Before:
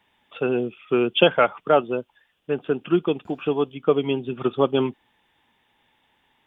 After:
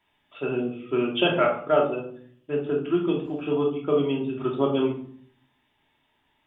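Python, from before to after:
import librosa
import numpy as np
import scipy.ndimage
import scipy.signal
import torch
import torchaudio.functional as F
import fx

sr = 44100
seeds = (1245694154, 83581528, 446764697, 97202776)

y = fx.room_shoebox(x, sr, seeds[0], volume_m3=690.0, walls='furnished', distance_m=2.9)
y = F.gain(torch.from_numpy(y), -8.0).numpy()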